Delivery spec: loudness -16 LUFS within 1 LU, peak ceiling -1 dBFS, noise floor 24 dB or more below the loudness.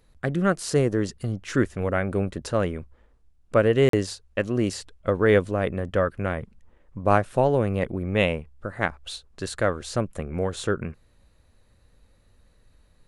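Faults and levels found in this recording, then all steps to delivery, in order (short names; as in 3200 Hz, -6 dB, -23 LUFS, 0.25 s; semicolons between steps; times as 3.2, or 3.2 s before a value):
dropouts 1; longest dropout 43 ms; loudness -25.0 LUFS; peak -5.5 dBFS; loudness target -16.0 LUFS
-> interpolate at 3.89, 43 ms; gain +9 dB; limiter -1 dBFS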